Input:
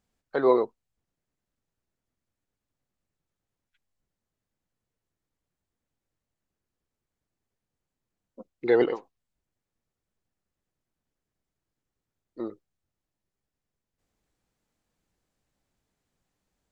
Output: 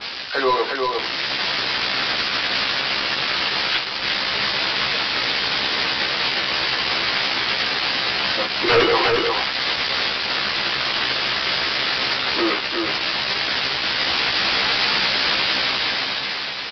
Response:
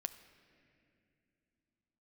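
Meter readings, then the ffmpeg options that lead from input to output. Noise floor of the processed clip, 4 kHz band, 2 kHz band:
−27 dBFS, +40.0 dB, +27.0 dB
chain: -filter_complex "[0:a]aeval=exprs='val(0)+0.5*0.0316*sgn(val(0))':channel_layout=same,aderivative,dynaudnorm=framelen=190:gausssize=11:maxgain=11.5dB,aresample=11025,aeval=exprs='0.15*sin(PI/2*5.01*val(0)/0.15)':channel_layout=same,aresample=44100,asplit=2[link_01][link_02];[link_02]adelay=15,volume=-3dB[link_03];[link_01][link_03]amix=inputs=2:normalize=0,aecho=1:1:356:0.631,adynamicequalizer=threshold=0.02:dfrequency=3500:dqfactor=0.7:tfrequency=3500:tqfactor=0.7:attack=5:release=100:ratio=0.375:range=3.5:mode=cutabove:tftype=highshelf,volume=4dB"

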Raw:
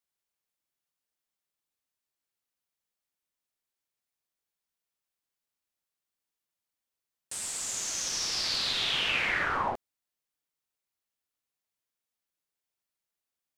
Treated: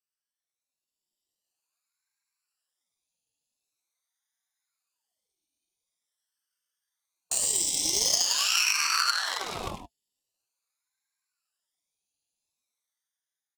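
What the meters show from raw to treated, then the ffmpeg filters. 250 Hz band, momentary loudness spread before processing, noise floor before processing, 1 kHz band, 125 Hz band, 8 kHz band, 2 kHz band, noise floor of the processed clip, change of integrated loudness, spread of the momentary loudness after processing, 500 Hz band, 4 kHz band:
+0.5 dB, 9 LU, below −85 dBFS, +1.0 dB, −0.5 dB, +8.0 dB, 0.0 dB, below −85 dBFS, +4.5 dB, 11 LU, 0.0 dB, +3.0 dB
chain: -filter_complex "[0:a]afftfilt=real='re*pow(10,20/40*sin(2*PI*(1.7*log(max(b,1)*sr/1024/100)/log(2)-(0.33)*(pts-256)/sr)))':imag='im*pow(10,20/40*sin(2*PI*(1.7*log(max(b,1)*sr/1024/100)/log(2)-(0.33)*(pts-256)/sr)))':win_size=1024:overlap=0.75,asplit=2[link_01][link_02];[link_02]adelay=100,highpass=300,lowpass=3400,asoftclip=type=hard:threshold=-21.5dB,volume=-7dB[link_03];[link_01][link_03]amix=inputs=2:normalize=0,flanger=delay=2.2:depth=3.4:regen=56:speed=0.16:shape=sinusoidal,highshelf=frequency=3100:gain=8,acrusher=bits=5:mode=log:mix=0:aa=0.000001,lowpass=10000,lowshelf=frequency=160:gain=9,acompressor=threshold=-26dB:ratio=5,aeval=exprs='0.133*(cos(1*acos(clip(val(0)/0.133,-1,1)))-cos(1*PI/2))+0.015*(cos(2*acos(clip(val(0)/0.133,-1,1)))-cos(2*PI/2))+0.0299*(cos(3*acos(clip(val(0)/0.133,-1,1)))-cos(3*PI/2))+0.00075*(cos(4*acos(clip(val(0)/0.133,-1,1)))-cos(4*PI/2))+0.000944*(cos(5*acos(clip(val(0)/0.133,-1,1)))-cos(5*PI/2))':channel_layout=same,asuperstop=centerf=1300:order=8:qfactor=0.69,dynaudnorm=framelen=310:gausssize=7:maxgain=9dB,aeval=exprs='val(0)*sin(2*PI*950*n/s+950*0.7/0.45*sin(2*PI*0.45*n/s))':channel_layout=same,volume=3.5dB"

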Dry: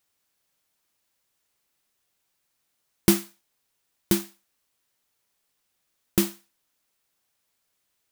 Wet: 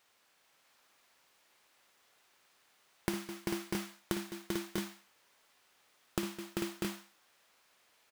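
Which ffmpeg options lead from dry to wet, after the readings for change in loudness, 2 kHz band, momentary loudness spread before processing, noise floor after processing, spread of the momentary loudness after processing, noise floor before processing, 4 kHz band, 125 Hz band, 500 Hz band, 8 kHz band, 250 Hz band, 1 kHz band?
−14.0 dB, −4.0 dB, 7 LU, −71 dBFS, 4 LU, −76 dBFS, −7.5 dB, −10.5 dB, −7.5 dB, −12.5 dB, −9.5 dB, −2.5 dB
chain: -filter_complex "[0:a]asplit=2[link_01][link_02];[link_02]highpass=frequency=720:poles=1,volume=17dB,asoftclip=type=tanh:threshold=-1.5dB[link_03];[link_01][link_03]amix=inputs=2:normalize=0,lowpass=frequency=2000:poles=1,volume=-6dB,aecho=1:1:55|208|391|444|644|669:0.531|0.141|0.282|0.422|0.316|0.501,acompressor=threshold=-34dB:ratio=10,volume=1dB"

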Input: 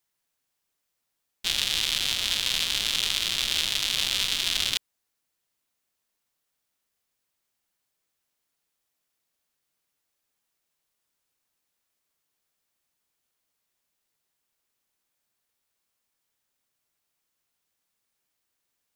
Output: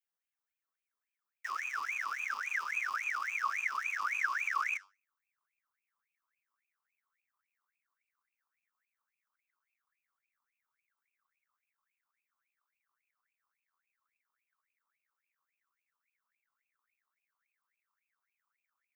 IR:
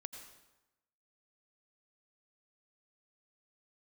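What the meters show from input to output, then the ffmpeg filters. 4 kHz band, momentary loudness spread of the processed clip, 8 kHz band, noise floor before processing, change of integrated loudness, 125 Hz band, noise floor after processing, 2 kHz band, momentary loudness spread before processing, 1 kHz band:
−30.5 dB, 5 LU, −21.0 dB, −80 dBFS, −10.0 dB, below −35 dB, below −85 dBFS, −0.5 dB, 3 LU, +7.0 dB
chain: -filter_complex "[0:a]equalizer=frequency=8600:width_type=o:width=2.7:gain=-13.5,flanger=delay=9.2:depth=1.2:regen=-81:speed=0.54:shape=sinusoidal,asubboost=boost=11:cutoff=180,asuperstop=centerf=1800:order=20:qfactor=0.66,acrossover=split=2900[link_01][link_02];[link_02]acompressor=threshold=-48dB:ratio=4:attack=1:release=60[link_03];[link_01][link_03]amix=inputs=2:normalize=0,aeval=exprs='val(0)*sin(2*PI*1800*n/s+1800*0.4/3.6*sin(2*PI*3.6*n/s))':channel_layout=same"

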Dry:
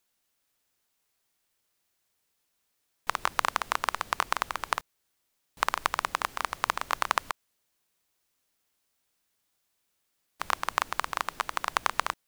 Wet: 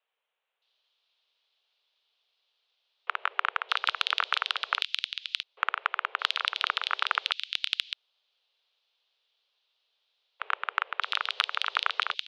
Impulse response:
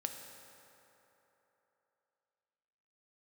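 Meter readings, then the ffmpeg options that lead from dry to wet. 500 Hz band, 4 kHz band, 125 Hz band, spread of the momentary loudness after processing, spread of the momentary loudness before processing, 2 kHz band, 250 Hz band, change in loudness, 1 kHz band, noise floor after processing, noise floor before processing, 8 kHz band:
−6.0 dB, +9.5 dB, below −40 dB, 6 LU, 5 LU, +2.5 dB, below −20 dB, +1.5 dB, −2.5 dB, −81 dBFS, −77 dBFS, −11.5 dB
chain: -filter_complex "[0:a]acrossover=split=2100[link_01][link_02];[link_02]adelay=620[link_03];[link_01][link_03]amix=inputs=2:normalize=0,highpass=frequency=160:width_type=q:width=0.5412,highpass=frequency=160:width_type=q:width=1.307,lowpass=frequency=3500:width_type=q:width=0.5176,lowpass=frequency=3500:width_type=q:width=0.7071,lowpass=frequency=3500:width_type=q:width=1.932,afreqshift=250,aexciter=amount=4.2:drive=8:freq=2700"

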